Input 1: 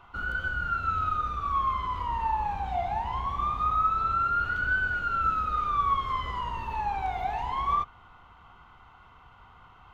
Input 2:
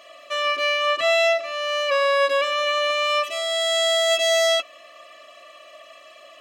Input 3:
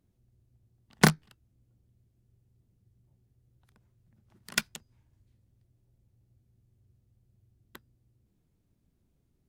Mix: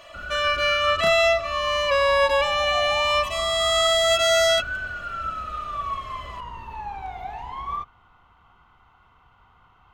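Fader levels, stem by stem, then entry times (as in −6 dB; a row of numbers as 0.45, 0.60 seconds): −3.5, 0.0, −16.5 decibels; 0.00, 0.00, 0.00 seconds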